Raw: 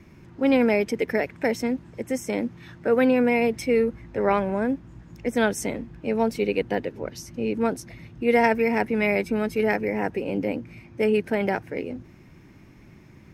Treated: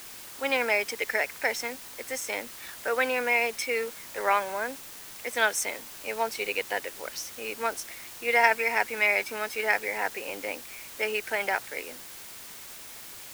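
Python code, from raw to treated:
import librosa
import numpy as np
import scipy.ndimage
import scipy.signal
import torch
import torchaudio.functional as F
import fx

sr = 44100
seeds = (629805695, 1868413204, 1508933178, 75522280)

p1 = scipy.signal.sosfilt(scipy.signal.butter(2, 960.0, 'highpass', fs=sr, output='sos'), x)
p2 = fx.quant_dither(p1, sr, seeds[0], bits=6, dither='triangular')
p3 = p1 + (p2 * librosa.db_to_amplitude(-9.0))
y = p3 * librosa.db_to_amplitude(1.0)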